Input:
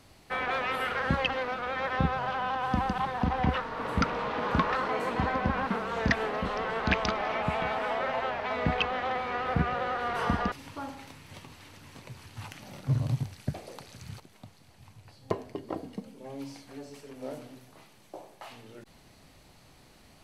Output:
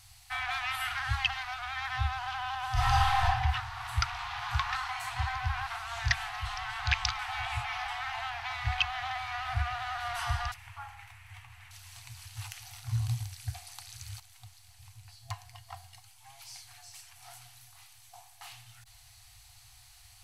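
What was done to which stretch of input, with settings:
2.73–3.24 s: reverb throw, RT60 1.2 s, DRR -9 dB
7.19–7.88 s: reverse
10.54–11.71 s: resonant high shelf 3.1 kHz -12 dB, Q 1.5
whole clip: FFT band-reject 120–680 Hz; FFT filter 480 Hz 0 dB, 910 Hz -8 dB, 8 kHz +7 dB; trim +1.5 dB

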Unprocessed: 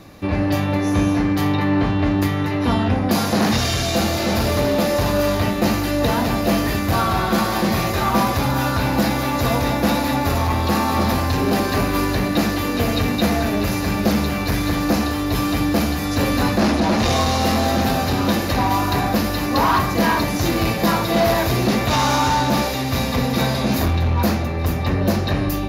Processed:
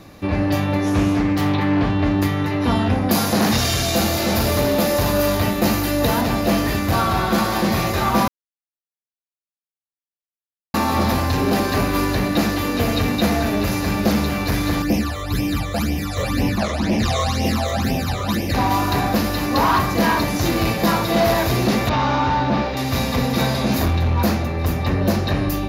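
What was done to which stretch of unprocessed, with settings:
0.86–1.90 s: loudspeaker Doppler distortion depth 0.25 ms
2.75–6.21 s: treble shelf 10 kHz +9.5 dB
8.28–10.74 s: mute
14.82–18.54 s: phase shifter stages 12, 2 Hz, lowest notch 260–1400 Hz
21.89–22.77 s: distance through air 240 m

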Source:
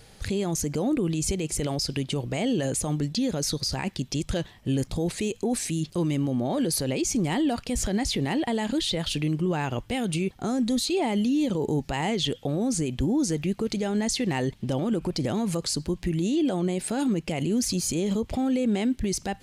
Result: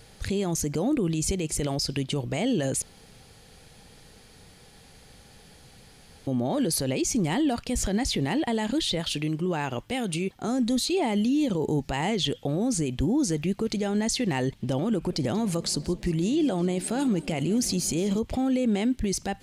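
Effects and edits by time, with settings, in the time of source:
2.82–6.27 s: room tone
9.00–10.48 s: bass shelf 120 Hz -9 dB
14.91–18.19 s: modulated delay 184 ms, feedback 77%, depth 119 cents, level -21 dB

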